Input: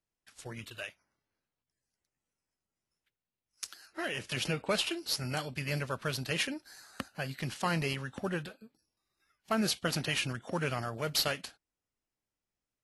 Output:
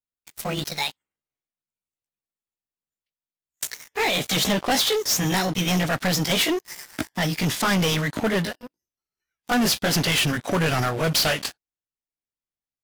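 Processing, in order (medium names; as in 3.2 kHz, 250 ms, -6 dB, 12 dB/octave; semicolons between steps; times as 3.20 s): pitch bend over the whole clip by +6.5 st ending unshifted; waveshaping leveller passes 5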